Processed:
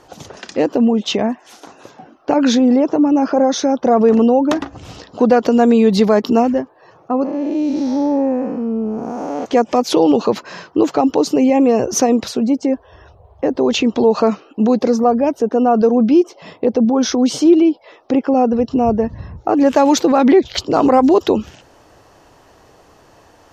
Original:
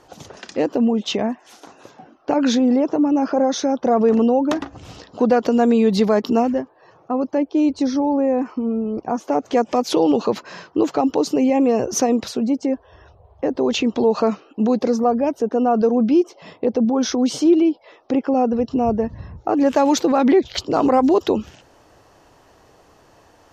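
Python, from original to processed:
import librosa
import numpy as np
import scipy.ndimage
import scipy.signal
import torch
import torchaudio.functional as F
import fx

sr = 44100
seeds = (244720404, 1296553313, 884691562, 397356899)

y = fx.spec_blur(x, sr, span_ms=311.0, at=(7.23, 9.44), fade=0.02)
y = y * librosa.db_to_amplitude(4.0)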